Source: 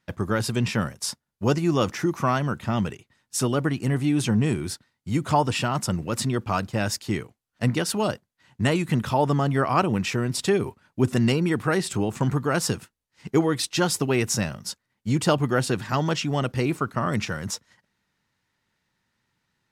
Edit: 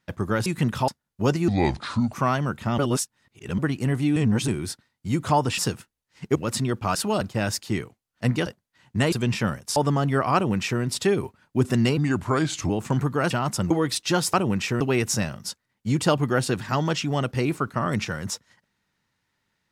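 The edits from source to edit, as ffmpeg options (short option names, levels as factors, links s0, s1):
-filter_complex "[0:a]asplit=22[s0][s1][s2][s3][s4][s5][s6][s7][s8][s9][s10][s11][s12][s13][s14][s15][s16][s17][s18][s19][s20][s21];[s0]atrim=end=0.462[s22];[s1]atrim=start=8.768:end=9.192[s23];[s2]atrim=start=1.098:end=1.704[s24];[s3]atrim=start=1.7:end=2.15,asetpts=PTS-STARTPTS,asetrate=30429,aresample=44100[s25];[s4]atrim=start=2.146:end=2.802[s26];[s5]atrim=start=2.798:end=3.602,asetpts=PTS-STARTPTS,areverse[s27];[s6]atrim=start=3.598:end=4.182[s28];[s7]atrim=start=4.178:end=4.502,asetpts=PTS-STARTPTS,areverse[s29];[s8]atrim=start=4.498:end=5.602[s30];[s9]atrim=start=12.608:end=13.382[s31];[s10]atrim=start=5.998:end=6.602[s32];[s11]atrim=start=7.848:end=8.112[s33];[s12]atrim=start=6.598:end=7.852[s34];[s13]atrim=start=8.108:end=8.772[s35];[s14]atrim=start=0.458:end=1.102[s36];[s15]atrim=start=9.188:end=11.404[s37];[s16]atrim=start=11.4:end=12,asetpts=PTS-STARTPTS,asetrate=36603,aresample=44100[s38];[s17]atrim=start=11.996:end=12.612[s39];[s18]atrim=start=5.598:end=6.002[s40];[s19]atrim=start=13.378:end=14.012[s41];[s20]atrim=start=9.768:end=10.242[s42];[s21]atrim=start=14.008[s43];[s22][s23]acrossfade=d=0.004:c1=hsin:c2=hsin[s44];[s44][s24]acrossfade=d=0.004:c1=hsin:c2=hsin[s45];[s45][s25]acrossfade=d=0.004:c1=hsin:c2=hsin[s46];[s46][s26]acrossfade=d=0.004:c1=hsin:c2=hsin[s47];[s47][s27]acrossfade=d=0.004:c1=hsin:c2=hsin[s48];[s48][s28]acrossfade=d=0.004:c1=hsin:c2=hsin[s49];[s49][s29]acrossfade=d=0.004:c1=hsin:c2=hsin[s50];[s50][s30]acrossfade=d=0.004:c1=hsin:c2=hsin[s51];[s51][s31]acrossfade=d=0.004:c1=hsin:c2=hsin[s52];[s52][s32]acrossfade=d=0.004:c1=hsin:c2=hsin[s53];[s53][s33]acrossfade=d=0.004:c1=hsin:c2=hsin[s54];[s54][s34]acrossfade=d=0.004:c1=hsin:c2=hsin[s55];[s55][s35]acrossfade=d=0.004:c1=hsin:c2=hsin[s56];[s56][s36]acrossfade=d=0.004:c1=hsin:c2=hsin[s57];[s57][s37]acrossfade=d=0.004:c1=hsin:c2=hsin[s58];[s58][s38]acrossfade=d=0.004:c1=hsin:c2=hsin[s59];[s59][s39]acrossfade=d=0.004:c1=hsin:c2=hsin[s60];[s60][s40]acrossfade=d=0.004:c1=hsin:c2=hsin[s61];[s61][s41]acrossfade=d=0.004:c1=hsin:c2=hsin[s62];[s62][s42]acrossfade=d=0.004:c1=hsin:c2=hsin[s63];[s63][s43]acrossfade=d=0.004:c1=hsin:c2=hsin"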